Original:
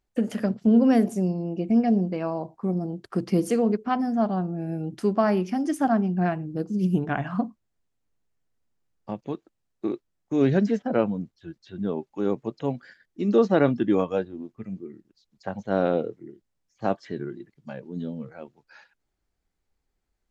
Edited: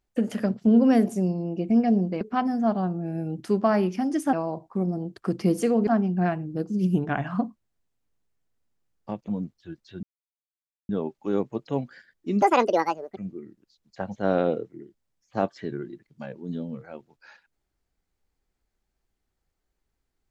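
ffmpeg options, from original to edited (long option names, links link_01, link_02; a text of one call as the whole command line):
ffmpeg -i in.wav -filter_complex "[0:a]asplit=8[link_01][link_02][link_03][link_04][link_05][link_06][link_07][link_08];[link_01]atrim=end=2.212[link_09];[link_02]atrim=start=3.748:end=5.872[link_10];[link_03]atrim=start=2.208:end=3.752[link_11];[link_04]atrim=start=5.868:end=9.282[link_12];[link_05]atrim=start=11.058:end=11.81,asetpts=PTS-STARTPTS,afade=type=out:start_time=0.748:duration=0.004:curve=hsin,apad=pad_dur=0.86[link_13];[link_06]atrim=start=11.81:end=13.344,asetpts=PTS-STARTPTS,afade=type=in:duration=0.004:curve=hsin[link_14];[link_07]atrim=start=13.34:end=14.64,asetpts=PTS-STARTPTS,asetrate=76734,aresample=44100,atrim=end_sample=32948,asetpts=PTS-STARTPTS[link_15];[link_08]atrim=start=14.636[link_16];[link_09][link_10]acrossfade=duration=0.004:curve1=hsin:curve2=hsin[link_17];[link_17][link_11]acrossfade=duration=0.004:curve1=hsin:curve2=hsin[link_18];[link_18][link_12]acrossfade=duration=0.004:curve1=hsin:curve2=hsin[link_19];[link_13][link_14]concat=n=2:v=0:a=1[link_20];[link_19][link_20]acrossfade=duration=0.004:curve1=hsin:curve2=hsin[link_21];[link_21][link_15]acrossfade=duration=0.004:curve1=hsin:curve2=hsin[link_22];[link_22][link_16]acrossfade=duration=0.004:curve1=hsin:curve2=hsin" out.wav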